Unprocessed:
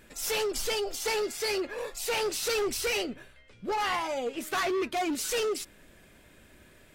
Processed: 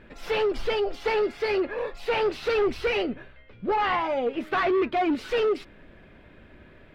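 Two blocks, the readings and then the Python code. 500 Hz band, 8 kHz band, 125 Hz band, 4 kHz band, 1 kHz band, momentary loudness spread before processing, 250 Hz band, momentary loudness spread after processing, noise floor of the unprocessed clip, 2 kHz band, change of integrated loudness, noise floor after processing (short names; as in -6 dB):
+6.0 dB, under -15 dB, +7.0 dB, -2.5 dB, +5.5 dB, 7 LU, +6.5 dB, 6 LU, -57 dBFS, +3.0 dB, +4.0 dB, -52 dBFS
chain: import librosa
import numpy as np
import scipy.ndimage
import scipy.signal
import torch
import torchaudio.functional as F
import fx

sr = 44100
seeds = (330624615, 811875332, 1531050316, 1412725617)

y = fx.air_absorb(x, sr, metres=380.0)
y = y * 10.0 ** (7.0 / 20.0)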